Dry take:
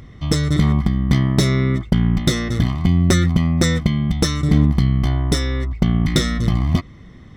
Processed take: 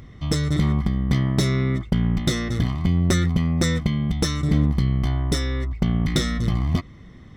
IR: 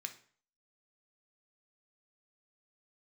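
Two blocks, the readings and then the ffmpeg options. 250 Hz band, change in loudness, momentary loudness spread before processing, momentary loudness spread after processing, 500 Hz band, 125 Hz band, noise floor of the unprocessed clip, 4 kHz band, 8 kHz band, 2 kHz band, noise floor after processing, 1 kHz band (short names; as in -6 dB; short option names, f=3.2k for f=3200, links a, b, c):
-4.5 dB, -4.5 dB, 5 LU, 4 LU, -4.0 dB, -4.0 dB, -41 dBFS, -4.5 dB, -4.5 dB, -4.0 dB, -43 dBFS, -4.0 dB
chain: -filter_complex "[0:a]asplit=2[a][b];[b]asoftclip=type=tanh:threshold=-17.5dB,volume=-5dB[c];[a][c]amix=inputs=2:normalize=0,volume=-6.5dB" -ar 48000 -c:a aac -b:a 192k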